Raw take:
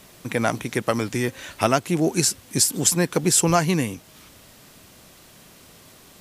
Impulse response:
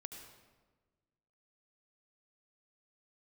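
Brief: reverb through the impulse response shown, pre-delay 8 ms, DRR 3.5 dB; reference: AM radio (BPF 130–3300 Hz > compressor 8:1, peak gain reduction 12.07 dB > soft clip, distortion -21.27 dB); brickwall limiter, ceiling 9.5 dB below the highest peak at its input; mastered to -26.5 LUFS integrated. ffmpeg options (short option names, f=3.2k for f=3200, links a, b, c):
-filter_complex "[0:a]alimiter=limit=-12dB:level=0:latency=1,asplit=2[a][b];[1:a]atrim=start_sample=2205,adelay=8[c];[b][c]afir=irnorm=-1:irlink=0,volume=0.5dB[d];[a][d]amix=inputs=2:normalize=0,highpass=130,lowpass=3.3k,acompressor=threshold=-28dB:ratio=8,asoftclip=threshold=-21.5dB,volume=8dB"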